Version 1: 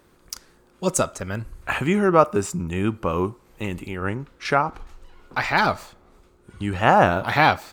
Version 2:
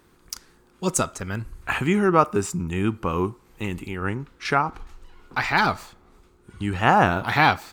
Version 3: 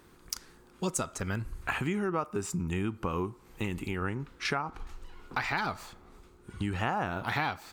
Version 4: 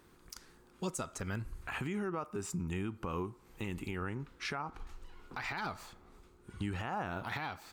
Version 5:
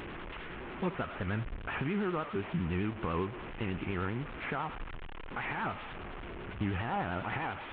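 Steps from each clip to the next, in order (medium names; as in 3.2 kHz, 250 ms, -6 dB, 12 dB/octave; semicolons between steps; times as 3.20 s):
peaking EQ 580 Hz -7.5 dB 0.4 oct
compression 5:1, threshold -29 dBFS, peak gain reduction 16 dB
peak limiter -23 dBFS, peak gain reduction 9.5 dB; trim -4.5 dB
one-bit delta coder 16 kbps, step -40.5 dBFS; vibrato 10 Hz 86 cents; trim +4 dB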